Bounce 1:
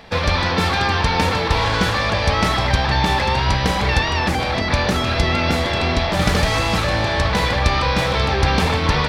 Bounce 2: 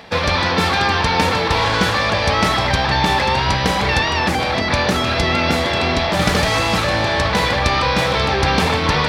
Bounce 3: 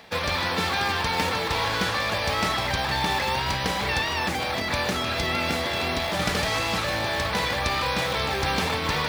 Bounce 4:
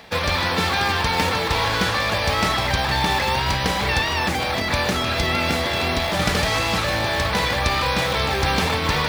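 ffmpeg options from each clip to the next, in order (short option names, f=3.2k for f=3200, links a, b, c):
-af "highpass=f=120:p=1,areverse,acompressor=mode=upward:threshold=-21dB:ratio=2.5,areverse,volume=2.5dB"
-filter_complex "[0:a]lowshelf=f=460:g=-4,acrossover=split=820[a][b];[a]acrusher=samples=12:mix=1:aa=0.000001:lfo=1:lforange=7.2:lforate=3.5[c];[c][b]amix=inputs=2:normalize=0,volume=-7dB"
-af "lowshelf=f=84:g=6,volume=4dB"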